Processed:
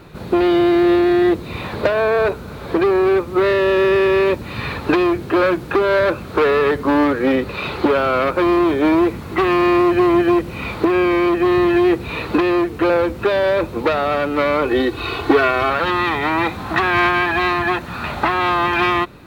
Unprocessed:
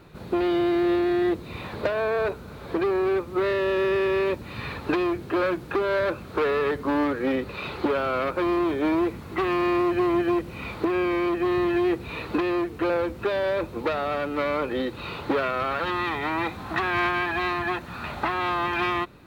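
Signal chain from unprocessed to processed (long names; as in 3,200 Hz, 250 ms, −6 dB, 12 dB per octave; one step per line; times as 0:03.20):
0:14.65–0:15.70: comb filter 2.7 ms, depth 77%
level +8.5 dB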